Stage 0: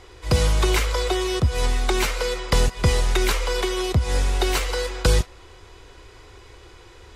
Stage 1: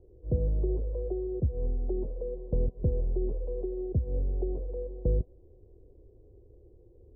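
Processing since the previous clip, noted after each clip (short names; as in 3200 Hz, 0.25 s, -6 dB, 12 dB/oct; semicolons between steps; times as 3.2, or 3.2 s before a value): steep low-pass 540 Hz 36 dB/oct; gain -8 dB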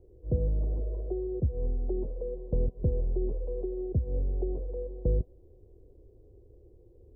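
spectral repair 0.62–1.06, 330–670 Hz before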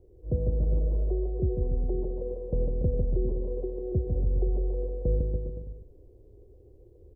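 bouncing-ball echo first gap 0.15 s, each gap 0.9×, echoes 5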